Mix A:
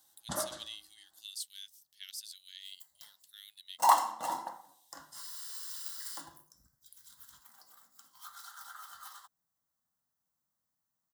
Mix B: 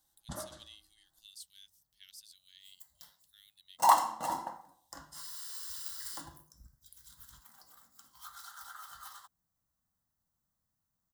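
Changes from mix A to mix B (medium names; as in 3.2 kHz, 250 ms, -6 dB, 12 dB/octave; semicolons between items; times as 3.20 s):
speech -9.0 dB; first sound -8.0 dB; master: remove high-pass 330 Hz 6 dB/octave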